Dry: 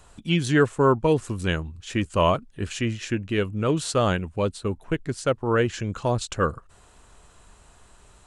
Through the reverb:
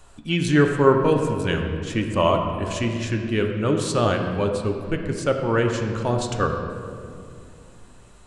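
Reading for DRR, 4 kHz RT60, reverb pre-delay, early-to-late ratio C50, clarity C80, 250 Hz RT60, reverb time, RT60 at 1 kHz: 3.0 dB, 1.4 s, 3 ms, 5.0 dB, 6.0 dB, 3.7 s, 2.4 s, 2.1 s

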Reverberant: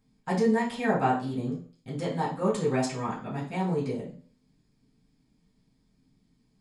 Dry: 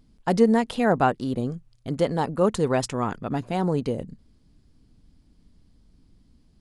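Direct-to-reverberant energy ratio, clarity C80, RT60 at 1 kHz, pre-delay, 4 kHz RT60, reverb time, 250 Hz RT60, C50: -7.5 dB, 13.0 dB, 0.45 s, 3 ms, 0.40 s, 0.45 s, 0.45 s, 8.0 dB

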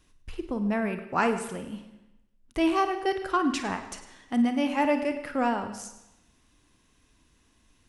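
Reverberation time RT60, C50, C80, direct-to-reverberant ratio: 0.90 s, 8.5 dB, 11.0 dB, 7.0 dB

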